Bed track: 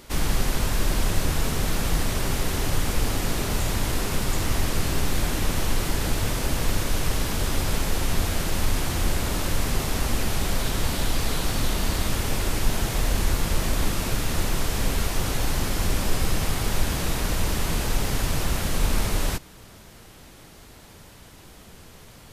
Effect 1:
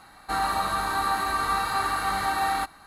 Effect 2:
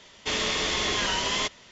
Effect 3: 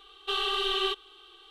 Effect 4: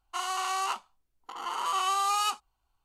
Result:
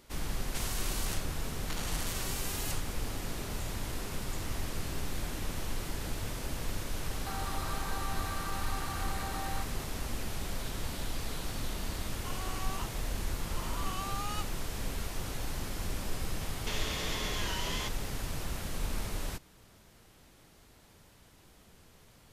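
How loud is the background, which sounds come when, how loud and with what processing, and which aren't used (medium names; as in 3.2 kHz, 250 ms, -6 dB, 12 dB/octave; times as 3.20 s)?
bed track -12 dB
0.41 s: add 4 -2.5 dB + spectrum-flattening compressor 10:1
6.98 s: add 1 -1.5 dB + compression, threshold -37 dBFS
12.11 s: add 4 -12.5 dB + band-stop 7.7 kHz
16.41 s: add 2 -2.5 dB + compression 3:1, threshold -34 dBFS
not used: 3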